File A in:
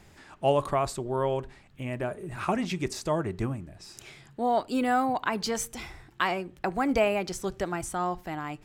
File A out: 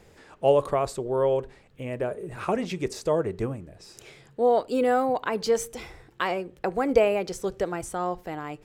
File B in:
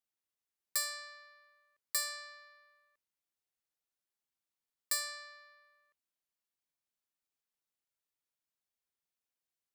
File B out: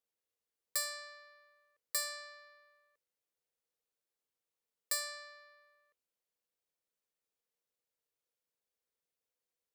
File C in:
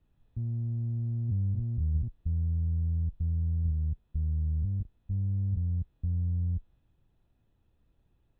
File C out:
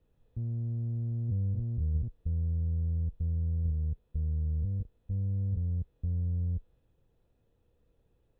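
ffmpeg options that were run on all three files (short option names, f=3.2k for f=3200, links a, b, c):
-af "equalizer=f=480:w=3.1:g=13,volume=-1.5dB"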